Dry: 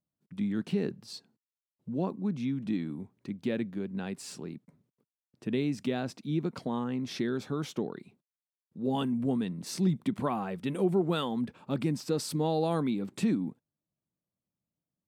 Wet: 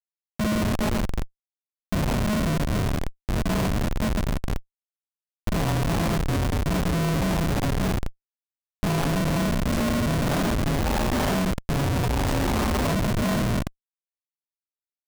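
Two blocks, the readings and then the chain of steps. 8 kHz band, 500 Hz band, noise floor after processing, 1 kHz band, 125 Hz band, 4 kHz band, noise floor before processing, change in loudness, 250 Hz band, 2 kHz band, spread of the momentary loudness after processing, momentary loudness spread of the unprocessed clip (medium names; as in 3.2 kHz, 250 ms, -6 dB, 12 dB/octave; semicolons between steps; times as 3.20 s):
+11.0 dB, +4.5 dB, under -85 dBFS, +9.5 dB, +11.0 dB, +9.5 dB, under -85 dBFS, +7.0 dB, +5.0 dB, +14.0 dB, 7 LU, 13 LU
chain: Schroeder reverb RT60 0.95 s, combs from 27 ms, DRR -5.5 dB; ring modulator 420 Hz; Schmitt trigger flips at -28.5 dBFS; trim +6.5 dB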